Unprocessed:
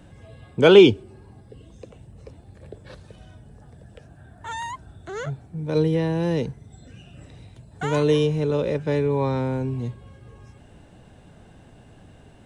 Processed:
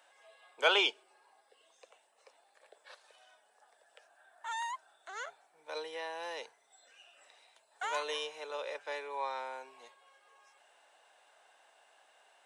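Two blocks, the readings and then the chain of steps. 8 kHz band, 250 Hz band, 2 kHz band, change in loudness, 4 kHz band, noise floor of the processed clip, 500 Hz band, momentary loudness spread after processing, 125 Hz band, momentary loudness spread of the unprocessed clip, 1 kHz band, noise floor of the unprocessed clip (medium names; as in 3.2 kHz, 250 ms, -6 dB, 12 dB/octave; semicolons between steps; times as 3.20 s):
no reading, -31.5 dB, -5.5 dB, -15.0 dB, -5.5 dB, -70 dBFS, -20.0 dB, 18 LU, under -40 dB, 21 LU, -6.0 dB, -50 dBFS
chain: high-pass 700 Hz 24 dB/octave; trim -5.5 dB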